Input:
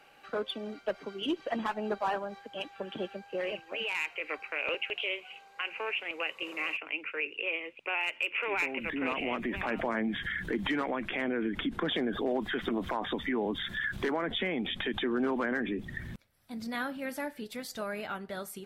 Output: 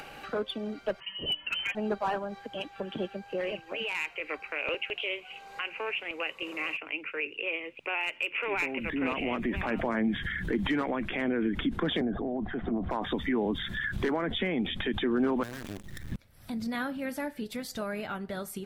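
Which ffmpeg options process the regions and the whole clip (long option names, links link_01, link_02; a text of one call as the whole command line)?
ffmpeg -i in.wav -filter_complex "[0:a]asettb=1/sr,asplit=3[link_01][link_02][link_03];[link_01]atrim=end=1.004[link_04];[link_02]atrim=start=1:end=1.75,asetpts=PTS-STARTPTS,afade=type=in:duration=0.004:curve=qsin,afade=type=out:start_time=0.746:duration=0.004:curve=qsin,bandreject=frequency=299.8:width_type=h:width=4,bandreject=frequency=599.6:width_type=h:width=4,bandreject=frequency=899.4:width_type=h:width=4,bandreject=frequency=1199.2:width_type=h:width=4,bandreject=frequency=1499:width_type=h:width=4,bandreject=frequency=1798.8:width_type=h:width=4,bandreject=frequency=2098.6:width_type=h:width=4,bandreject=frequency=2398.4:width_type=h:width=4,bandreject=frequency=2698.2:width_type=h:width=4,bandreject=frequency=2998:width_type=h:width=4,bandreject=frequency=3297.8:width_type=h:width=4,bandreject=frequency=3597.6:width_type=h:width=4,bandreject=frequency=3897.4:width_type=h:width=4,bandreject=frequency=4197.2:width_type=h:width=4,bandreject=frequency=4497:width_type=h:width=4,bandreject=frequency=4796.8:width_type=h:width=4,bandreject=frequency=5096.6:width_type=h:width=4,bandreject=frequency=5396.4:width_type=h:width=4,bandreject=frequency=5696.2:width_type=h:width=4,bandreject=frequency=5996:width_type=h:width=4,bandreject=frequency=6295.8:width_type=h:width=4,bandreject=frequency=6595.6:width_type=h:width=4,bandreject=frequency=6895.4:width_type=h:width=4,bandreject=frequency=7195.2:width_type=h:width=4,bandreject=frequency=7495:width_type=h:width=4,bandreject=frequency=7794.8:width_type=h:width=4,bandreject=frequency=8094.6:width_type=h:width=4,bandreject=frequency=8394.4:width_type=h:width=4,bandreject=frequency=8694.2:width_type=h:width=4,bandreject=frequency=8994:width_type=h:width=4,bandreject=frequency=9293.8:width_type=h:width=4,bandreject=frequency=9593.6:width_type=h:width=4,lowpass=frequency=2800:width_type=q:width=0.5098,lowpass=frequency=2800:width_type=q:width=0.6013,lowpass=frequency=2800:width_type=q:width=0.9,lowpass=frequency=2800:width_type=q:width=2.563,afreqshift=-3300,asoftclip=type=hard:threshold=-24dB[link_05];[link_03]atrim=start=1.746[link_06];[link_04][link_05]acrossfade=duration=0.004:curve1=hsin:curve2=qsin[link_07];[link_07][link_06]acrossfade=duration=0.004:curve1=qsin:curve2=hsin,asettb=1/sr,asplit=3[link_08][link_09][link_10];[link_08]atrim=end=12.014[link_11];[link_09]atrim=start=12.01:end=12.91,asetpts=PTS-STARTPTS,afade=type=in:duration=0.004:curve=qsin,afade=type=out:start_time=0.896:duration=0.004:curve=qsin,lowpass=1400,equalizer=frequency=710:width_type=o:width=0.42:gain=11.5,acrossover=split=300|3000[link_12][link_13][link_14];[link_13]acompressor=threshold=-38dB:ratio=5:attack=3.2:release=140:knee=2.83:detection=peak[link_15];[link_12][link_15][link_14]amix=inputs=3:normalize=0[link_16];[link_10]atrim=start=12.906[link_17];[link_11][link_16]acrossfade=duration=0.004:curve1=hsin:curve2=qsin[link_18];[link_18][link_17]acrossfade=duration=0.004:curve1=qsin:curve2=hsin,asettb=1/sr,asplit=3[link_19][link_20][link_21];[link_19]atrim=end=15.434[link_22];[link_20]atrim=start=15.43:end=16.12,asetpts=PTS-STARTPTS,afade=type=in:duration=0.004:curve=qsin,afade=type=out:start_time=0.686:duration=0.004:curve=qsin,bandreject=frequency=60:width_type=h:width=6,bandreject=frequency=120:width_type=h:width=6,bandreject=frequency=180:width_type=h:width=6,bandreject=frequency=240:width_type=h:width=6,acrusher=bits=6:dc=4:mix=0:aa=0.000001,aeval=exprs='(tanh(79.4*val(0)+0.7)-tanh(0.7))/79.4':channel_layout=same[link_23];[link_21]atrim=start=16.116[link_24];[link_22][link_23]acrossfade=duration=0.004:curve1=hsin:curve2=qsin[link_25];[link_25][link_24]acrossfade=duration=0.004:curve1=qsin:curve2=hsin,acompressor=mode=upward:threshold=-35dB:ratio=2.5,lowshelf=frequency=220:gain=9" out.wav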